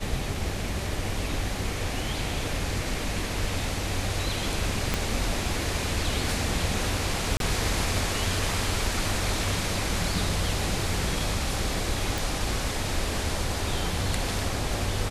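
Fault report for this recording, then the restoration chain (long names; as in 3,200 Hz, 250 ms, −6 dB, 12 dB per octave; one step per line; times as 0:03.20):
0:04.94: click −10 dBFS
0:07.37–0:07.40: drop-out 32 ms
0:12.18: click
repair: click removal
repair the gap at 0:07.37, 32 ms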